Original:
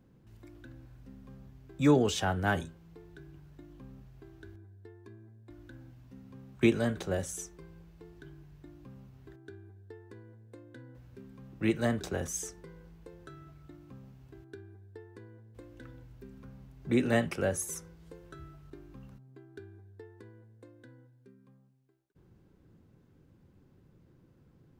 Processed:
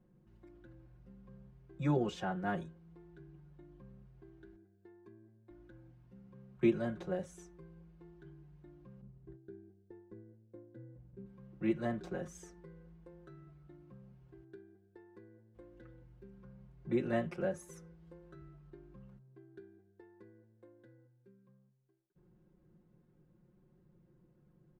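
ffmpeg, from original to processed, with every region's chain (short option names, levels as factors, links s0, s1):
-filter_complex "[0:a]asettb=1/sr,asplit=3[s0][s1][s2];[s0]atrim=end=9.014[s3];[s1]atrim=start=9.01:end=11.26,asetpts=PTS-STARTPTS,afade=t=in:d=0.004:c=qsin,afade=t=out:st=2.246:d=0.004:c=qsin,agate=range=0.0224:threshold=0.00316:ratio=3:release=100:detection=peak,tiltshelf=f=650:g=7.5[s4];[s2]atrim=start=11.256[s5];[s3][s4]acrossfade=d=0.004:c1=hsin:c2=qsin[s6];[s6][s5]acrossfade=d=0.004:c1=qsin:c2=hsin,lowpass=f=1400:p=1,aecho=1:1:5.6:1,volume=0.398"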